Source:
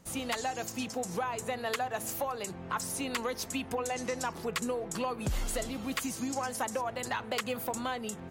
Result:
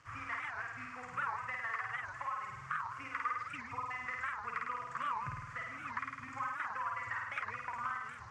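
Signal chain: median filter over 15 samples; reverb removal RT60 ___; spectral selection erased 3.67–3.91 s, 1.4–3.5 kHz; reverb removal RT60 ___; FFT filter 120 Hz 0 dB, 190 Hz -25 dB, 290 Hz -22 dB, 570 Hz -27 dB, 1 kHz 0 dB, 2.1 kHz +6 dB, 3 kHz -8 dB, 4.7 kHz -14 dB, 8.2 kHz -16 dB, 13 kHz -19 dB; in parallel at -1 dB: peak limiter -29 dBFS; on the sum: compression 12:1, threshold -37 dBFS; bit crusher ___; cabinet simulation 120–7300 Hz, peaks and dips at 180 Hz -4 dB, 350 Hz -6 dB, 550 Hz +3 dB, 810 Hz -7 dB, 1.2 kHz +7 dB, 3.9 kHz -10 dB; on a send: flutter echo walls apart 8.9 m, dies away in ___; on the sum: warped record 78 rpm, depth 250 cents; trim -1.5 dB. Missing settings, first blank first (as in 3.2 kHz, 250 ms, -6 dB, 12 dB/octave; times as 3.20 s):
0.55 s, 1.1 s, 10-bit, 1.2 s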